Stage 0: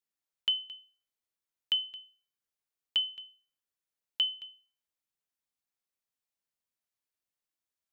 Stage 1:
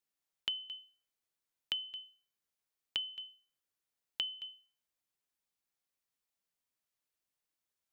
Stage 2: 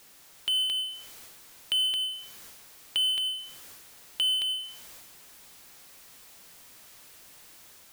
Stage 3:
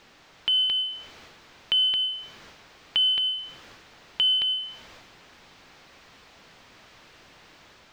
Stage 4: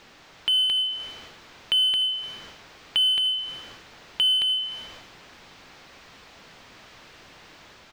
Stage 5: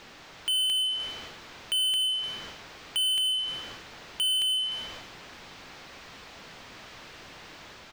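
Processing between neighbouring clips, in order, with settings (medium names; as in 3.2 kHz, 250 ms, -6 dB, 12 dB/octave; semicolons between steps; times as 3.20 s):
compression, threshold -35 dBFS, peak gain reduction 10.5 dB; trim +1 dB
transient shaper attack -4 dB, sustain +9 dB; level rider gain up to 5 dB; power-law waveshaper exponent 0.5
distance through air 200 m; trim +8 dB
in parallel at -3.5 dB: saturation -28.5 dBFS, distortion -9 dB; on the sum: delay 300 ms -19 dB; trim -1 dB
saturation -27 dBFS, distortion -10 dB; trim +2.5 dB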